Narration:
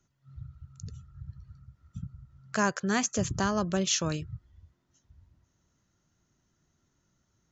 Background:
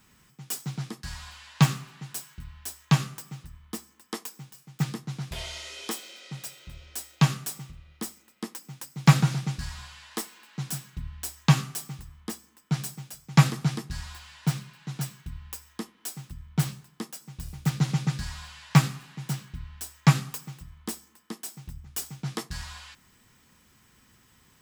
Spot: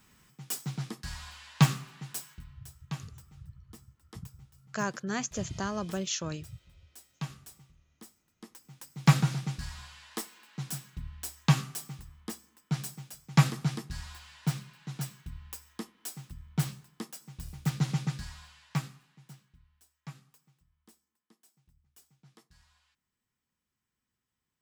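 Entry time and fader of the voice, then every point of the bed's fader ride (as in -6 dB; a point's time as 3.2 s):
2.20 s, -5.5 dB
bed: 2.32 s -2 dB
2.7 s -16.5 dB
8.28 s -16.5 dB
9.04 s -4 dB
17.98 s -4 dB
19.85 s -26.5 dB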